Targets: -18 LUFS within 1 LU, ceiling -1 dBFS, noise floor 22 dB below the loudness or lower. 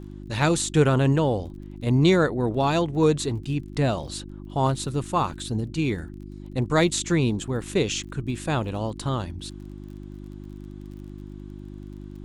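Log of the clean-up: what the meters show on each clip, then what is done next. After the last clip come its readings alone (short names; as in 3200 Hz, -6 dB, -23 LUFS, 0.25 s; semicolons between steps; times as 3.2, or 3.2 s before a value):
ticks 30/s; hum 50 Hz; harmonics up to 350 Hz; hum level -37 dBFS; loudness -24.5 LUFS; peak -7.0 dBFS; loudness target -18.0 LUFS
-> de-click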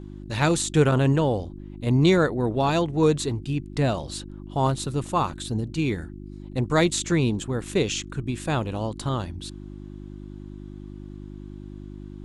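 ticks 0/s; hum 50 Hz; harmonics up to 350 Hz; hum level -37 dBFS
-> de-hum 50 Hz, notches 7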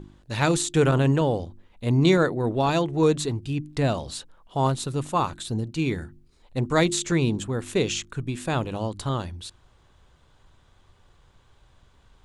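hum none; loudness -25.0 LUFS; peak -6.0 dBFS; loudness target -18.0 LUFS
-> gain +7 dB; limiter -1 dBFS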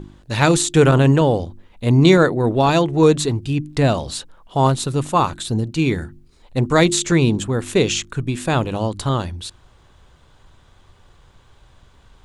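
loudness -18.0 LUFS; peak -1.0 dBFS; noise floor -52 dBFS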